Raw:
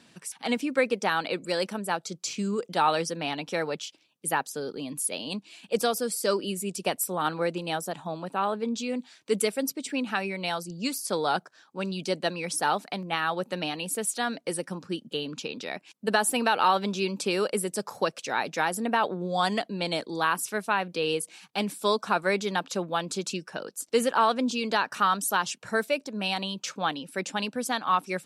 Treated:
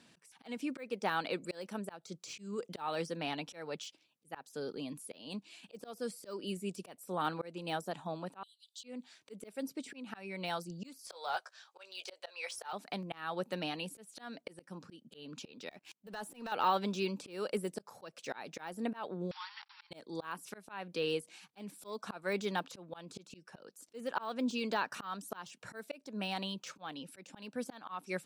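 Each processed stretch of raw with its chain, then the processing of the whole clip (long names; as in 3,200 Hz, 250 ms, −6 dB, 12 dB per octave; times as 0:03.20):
0:08.43–0:08.84: Chebyshev high-pass with heavy ripple 2,900 Hz, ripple 6 dB + upward compression, threshold −59 dBFS
0:10.99–0:12.73: inverse Chebyshev high-pass filter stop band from 260 Hz + parametric band 4,100 Hz +7.5 dB 2.7 octaves + double-tracking delay 16 ms −10 dB
0:15.70–0:16.52: downward compressor 8 to 1, threshold −32 dBFS + leveller curve on the samples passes 2
0:19.31–0:19.91: one scale factor per block 3 bits + downward compressor, threshold −33 dBFS + linear-phase brick-wall band-pass 790–5,700 Hz
whole clip: de-essing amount 90%; volume swells 276 ms; level −6 dB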